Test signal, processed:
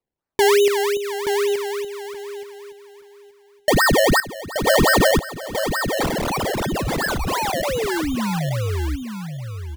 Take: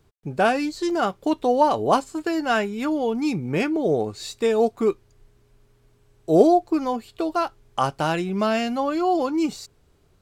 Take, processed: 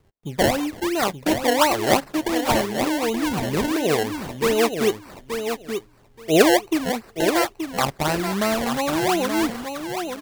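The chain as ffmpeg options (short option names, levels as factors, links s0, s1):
-af "aresample=32000,aresample=44100,acrusher=samples=25:mix=1:aa=0.000001:lfo=1:lforange=25:lforate=2.8,aecho=1:1:877|1754|2631:0.447|0.0715|0.0114"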